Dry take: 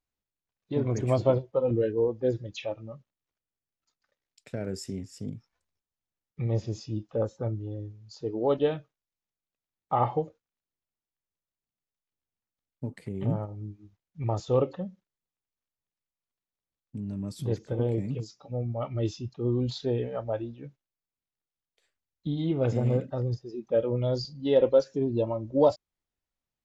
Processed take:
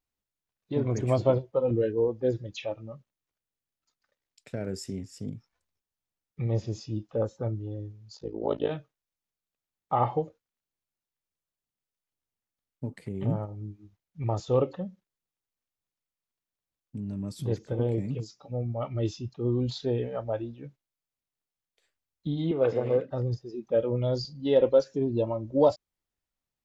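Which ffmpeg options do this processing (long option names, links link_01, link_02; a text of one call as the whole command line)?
ffmpeg -i in.wav -filter_complex "[0:a]asplit=3[link_01][link_02][link_03];[link_01]afade=type=out:start_time=8.16:duration=0.02[link_04];[link_02]tremolo=f=55:d=0.974,afade=type=in:start_time=8.16:duration=0.02,afade=type=out:start_time=8.69:duration=0.02[link_05];[link_03]afade=type=in:start_time=8.69:duration=0.02[link_06];[link_04][link_05][link_06]amix=inputs=3:normalize=0,asettb=1/sr,asplit=3[link_07][link_08][link_09];[link_07]atrim=end=22.514[link_10];[link_08]atrim=start=22.51:end=23.11,asetpts=PTS-STARTPTS,afade=type=in:duration=0.004:curve=qsin,afade=type=out:start_time=0.596:duration=0.004:curve=qsin,highpass=210,equalizer=frequency=220:width_type=q:width=4:gain=-8,equalizer=frequency=470:width_type=q:width=4:gain=7,equalizer=frequency=1100:width_type=q:width=4:gain=6,equalizer=frequency=1700:width_type=q:width=4:gain=4,lowpass=frequency=5100:width=0.5412,lowpass=frequency=5100:width=1.3066[link_11];[link_09]atrim=start=23.106[link_12];[link_10][link_11]acrossfade=duration=0.004:curve1=hsin:curve2=qsin[link_13];[link_13][link_12]acrossfade=duration=0.004:curve1=qsin:curve2=hsin" out.wav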